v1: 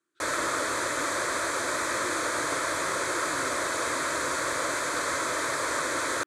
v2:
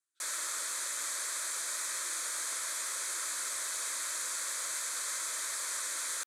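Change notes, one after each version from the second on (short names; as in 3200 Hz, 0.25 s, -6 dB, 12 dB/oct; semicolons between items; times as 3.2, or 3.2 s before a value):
master: add differentiator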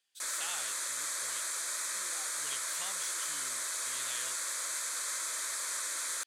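speech: remove double band-pass 660 Hz, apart 1.9 oct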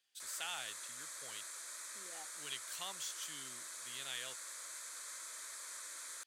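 background -12.0 dB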